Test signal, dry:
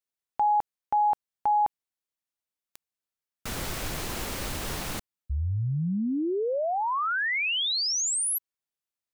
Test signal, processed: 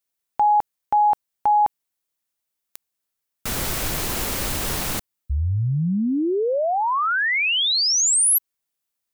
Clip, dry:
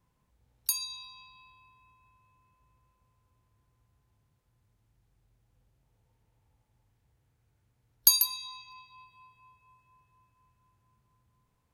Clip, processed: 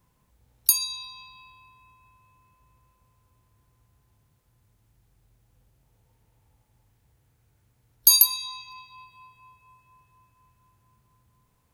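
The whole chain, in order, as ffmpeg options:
ffmpeg -i in.wav -af "highshelf=frequency=8400:gain=7,alimiter=level_in=7dB:limit=-1dB:release=50:level=0:latency=1,volume=-1dB" out.wav

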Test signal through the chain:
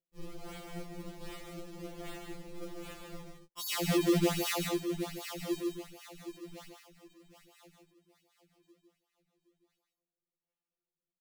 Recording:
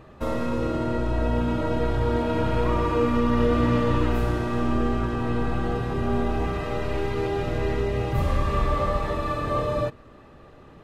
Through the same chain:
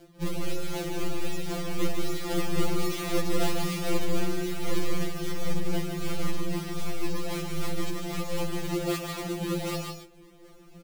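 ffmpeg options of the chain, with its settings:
ffmpeg -i in.wav -filter_complex "[0:a]acrusher=samples=36:mix=1:aa=0.000001:lfo=1:lforange=57.6:lforate=1.3,tremolo=f=3.8:d=0.55,equalizer=frequency=400:width_type=o:width=0.33:gain=7,equalizer=frequency=1000:width_type=o:width=0.33:gain=-6,equalizer=frequency=1600:width_type=o:width=0.33:gain=-6,asplit=2[link_01][link_02];[link_02]aecho=0:1:149|169:0.531|0.251[link_03];[link_01][link_03]amix=inputs=2:normalize=0,afftfilt=real='re*2.83*eq(mod(b,8),0)':imag='im*2.83*eq(mod(b,8),0)':win_size=2048:overlap=0.75" out.wav

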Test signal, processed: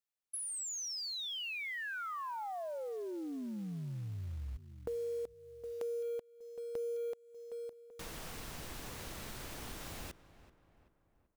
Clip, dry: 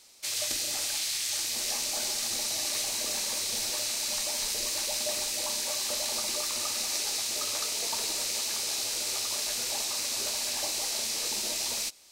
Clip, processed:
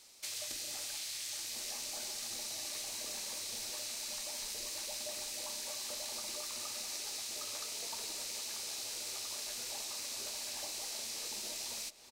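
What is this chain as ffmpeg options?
ffmpeg -i in.wav -filter_complex "[0:a]asplit=2[link_01][link_02];[link_02]adelay=384,lowpass=frequency=2200:poles=1,volume=-17.5dB,asplit=2[link_03][link_04];[link_04]adelay=384,lowpass=frequency=2200:poles=1,volume=0.51,asplit=2[link_05][link_06];[link_06]adelay=384,lowpass=frequency=2200:poles=1,volume=0.51,asplit=2[link_07][link_08];[link_08]adelay=384,lowpass=frequency=2200:poles=1,volume=0.51[link_09];[link_01][link_03][link_05][link_07][link_09]amix=inputs=5:normalize=0,acrusher=bits=6:mode=log:mix=0:aa=0.000001,acompressor=threshold=-39dB:ratio=2.5,volume=-3dB" out.wav

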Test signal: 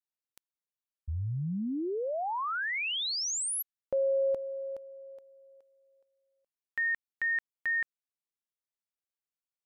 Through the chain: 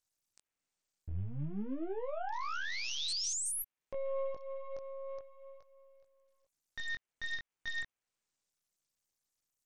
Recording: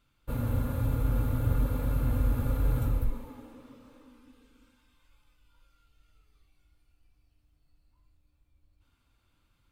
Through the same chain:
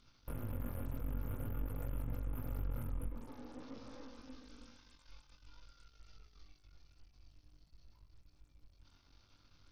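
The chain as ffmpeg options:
ffmpeg -i in.wav -af "aeval=exprs='if(lt(val(0),0),0.251*val(0),val(0))':channel_layout=same,highshelf=frequency=3900:width_type=q:width=1.5:gain=7.5,acontrast=59,alimiter=limit=-18.5dB:level=0:latency=1:release=81,acompressor=threshold=-35dB:ratio=5:attack=0.17:release=694:knee=6:detection=rms,flanger=delay=18:depth=4.3:speed=0.5,volume=3.5dB" -ar 48000 -c:a sbc -b:a 64k out.sbc

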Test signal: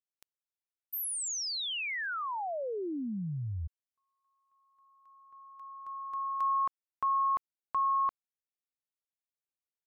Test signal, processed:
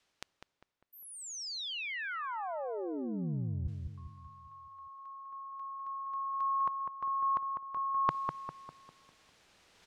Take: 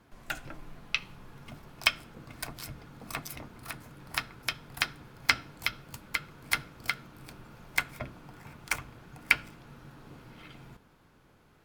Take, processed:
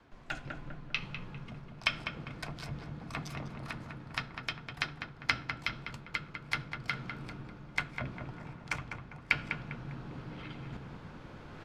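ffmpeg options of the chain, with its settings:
ffmpeg -i in.wav -filter_complex "[0:a]lowpass=4900,adynamicequalizer=threshold=0.00126:dfrequency=150:dqfactor=1.4:tfrequency=150:tqfactor=1.4:attack=5:release=100:ratio=0.375:range=2.5:mode=boostabove:tftype=bell,areverse,acompressor=mode=upward:threshold=-31dB:ratio=2.5:attack=63:release=847:knee=2.83:detection=peak,areverse,asplit=2[link_01][link_02];[link_02]adelay=200,lowpass=frequency=1700:poles=1,volume=-4.5dB,asplit=2[link_03][link_04];[link_04]adelay=200,lowpass=frequency=1700:poles=1,volume=0.49,asplit=2[link_05][link_06];[link_06]adelay=200,lowpass=frequency=1700:poles=1,volume=0.49,asplit=2[link_07][link_08];[link_08]adelay=200,lowpass=frequency=1700:poles=1,volume=0.49,asplit=2[link_09][link_10];[link_10]adelay=200,lowpass=frequency=1700:poles=1,volume=0.49,asplit=2[link_11][link_12];[link_12]adelay=200,lowpass=frequency=1700:poles=1,volume=0.49[link_13];[link_01][link_03][link_05][link_07][link_09][link_11][link_13]amix=inputs=7:normalize=0,volume=-5dB" out.wav

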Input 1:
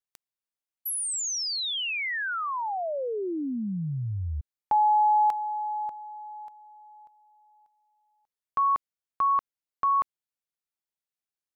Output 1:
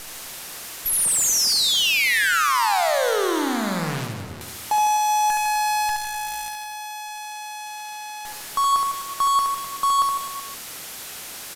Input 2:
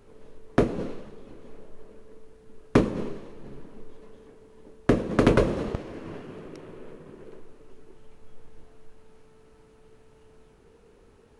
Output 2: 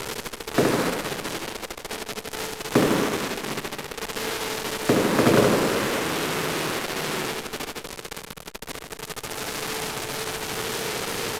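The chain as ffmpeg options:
ffmpeg -i in.wav -filter_complex "[0:a]aeval=exprs='val(0)+0.5*0.0708*sgn(val(0))':channel_layout=same,highpass=frequency=120:width=0.5412,highpass=frequency=120:width=1.3066,equalizer=frequency=210:width_type=o:width=1.4:gain=-3,acrusher=bits=5:dc=4:mix=0:aa=0.000001,asplit=2[link_01][link_02];[link_02]aecho=0:1:70|154|254.8|375.8|520.9:0.631|0.398|0.251|0.158|0.1[link_03];[link_01][link_03]amix=inputs=2:normalize=0,aresample=32000,aresample=44100" -ar 48000 -c:a libopus -b:a 128k out.opus

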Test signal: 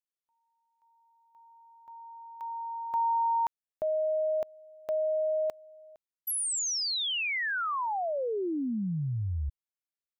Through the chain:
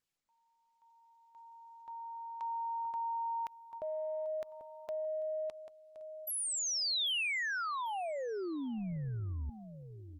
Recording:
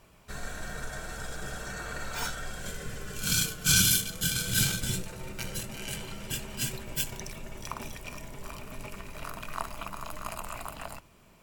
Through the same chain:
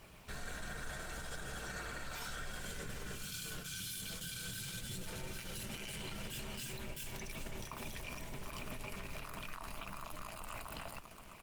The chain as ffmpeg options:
ffmpeg -i in.wav -af "aecho=1:1:791|1582:0.1|0.028,areverse,acompressor=threshold=-38dB:ratio=6:attack=6.1:release=63:knee=1:detection=rms,areverse,alimiter=level_in=11.5dB:limit=-24dB:level=0:latency=1:release=59,volume=-11.5dB,equalizer=frequency=3300:width_type=o:width=1.9:gain=4.5,volume=1.5dB" -ar 48000 -c:a libopus -b:a 24k out.opus

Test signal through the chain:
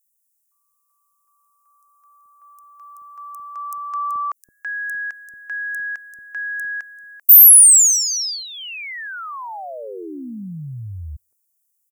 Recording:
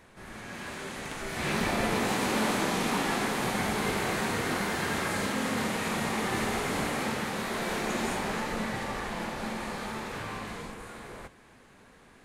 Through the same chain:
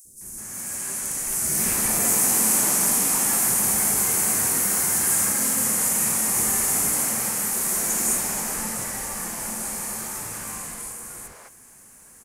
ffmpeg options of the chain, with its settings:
ffmpeg -i in.wav -filter_complex "[0:a]aexciter=amount=8:drive=9.1:freq=5600,acrossover=split=430|5200[link_01][link_02][link_03];[link_01]adelay=50[link_04];[link_02]adelay=210[link_05];[link_04][link_05][link_03]amix=inputs=3:normalize=0,volume=-1dB" out.wav

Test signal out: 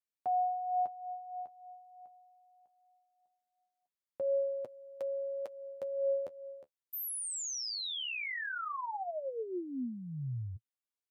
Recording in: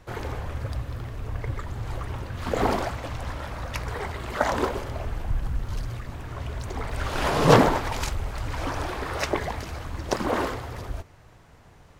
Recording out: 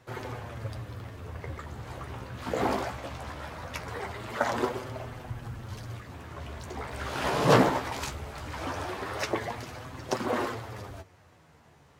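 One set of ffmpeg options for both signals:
ffmpeg -i in.wav -af "highpass=99,flanger=delay=7.8:depth=7.7:regen=30:speed=0.2:shape=sinusoidal" out.wav

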